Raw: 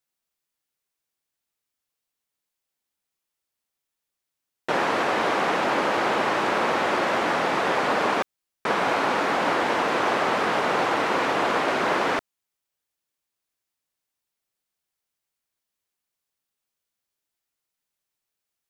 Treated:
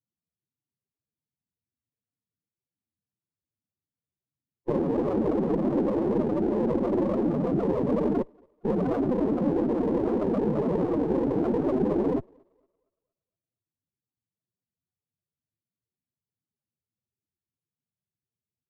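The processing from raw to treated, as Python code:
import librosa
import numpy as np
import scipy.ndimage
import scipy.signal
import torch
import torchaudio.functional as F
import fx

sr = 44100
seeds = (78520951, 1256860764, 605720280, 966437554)

y = scipy.signal.sosfilt(scipy.signal.butter(4, 88.0, 'highpass', fs=sr, output='sos'), x)
y = fx.riaa(y, sr, side='playback')
y = fx.leveller(y, sr, passes=1)
y = fx.env_lowpass_down(y, sr, base_hz=620.0, full_db=-20.0)
y = fx.spec_topn(y, sr, count=8)
y = fx.echo_thinned(y, sr, ms=232, feedback_pct=66, hz=830.0, wet_db=-24.0)
y = fx.running_max(y, sr, window=17)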